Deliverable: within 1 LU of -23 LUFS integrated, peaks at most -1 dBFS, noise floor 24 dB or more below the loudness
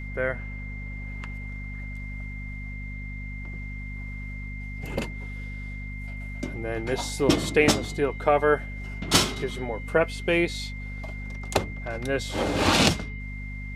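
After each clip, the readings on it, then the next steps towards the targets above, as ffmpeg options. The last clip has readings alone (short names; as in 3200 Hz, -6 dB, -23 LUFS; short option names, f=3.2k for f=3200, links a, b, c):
hum 50 Hz; harmonics up to 250 Hz; hum level -33 dBFS; steady tone 2100 Hz; tone level -40 dBFS; loudness -28.0 LUFS; peak -5.5 dBFS; loudness target -23.0 LUFS
-> -af "bandreject=f=50:t=h:w=6,bandreject=f=100:t=h:w=6,bandreject=f=150:t=h:w=6,bandreject=f=200:t=h:w=6,bandreject=f=250:t=h:w=6"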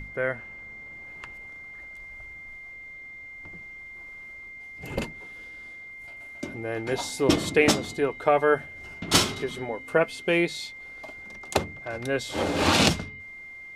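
hum none; steady tone 2100 Hz; tone level -40 dBFS
-> -af "bandreject=f=2.1k:w=30"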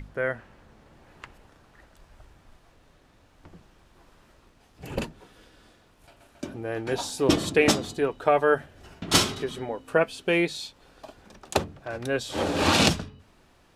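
steady tone none; loudness -25.5 LUFS; peak -5.0 dBFS; loudness target -23.0 LUFS
-> -af "volume=2.5dB"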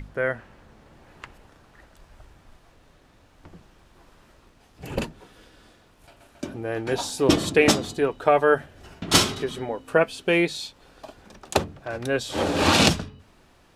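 loudness -23.0 LUFS; peak -2.5 dBFS; noise floor -57 dBFS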